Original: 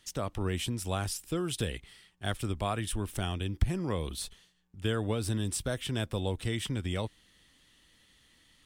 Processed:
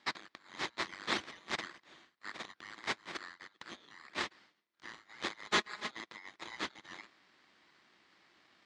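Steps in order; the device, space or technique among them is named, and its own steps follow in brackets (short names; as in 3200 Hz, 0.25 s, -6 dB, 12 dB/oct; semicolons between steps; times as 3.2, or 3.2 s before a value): inverse Chebyshev high-pass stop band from 1900 Hz, stop band 60 dB; ring modulator pedal into a guitar cabinet (polarity switched at an audio rate 1500 Hz; speaker cabinet 100–3500 Hz, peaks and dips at 110 Hz -7 dB, 220 Hz +4 dB, 330 Hz +9 dB, 1100 Hz +5 dB, 1900 Hz +5 dB, 2800 Hz -5 dB); 5.47–5.91 comb 4.8 ms, depth 67%; gain +17 dB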